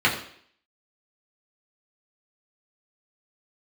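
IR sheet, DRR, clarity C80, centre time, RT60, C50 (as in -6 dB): -5.0 dB, 11.0 dB, 24 ms, 0.60 s, 8.5 dB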